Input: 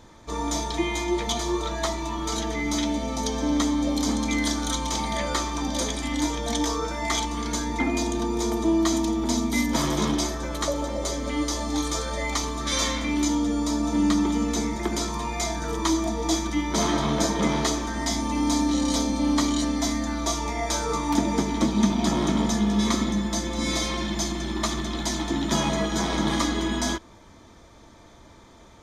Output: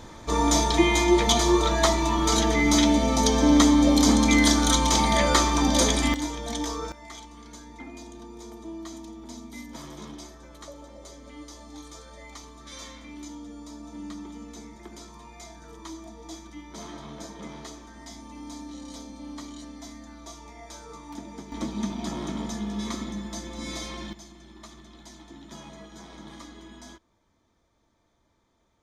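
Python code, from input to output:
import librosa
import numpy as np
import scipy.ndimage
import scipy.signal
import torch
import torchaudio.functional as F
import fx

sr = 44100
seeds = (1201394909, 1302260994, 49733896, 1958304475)

y = fx.gain(x, sr, db=fx.steps((0.0, 6.0), (6.14, -5.0), (6.92, -17.0), (21.52, -9.0), (24.13, -20.0)))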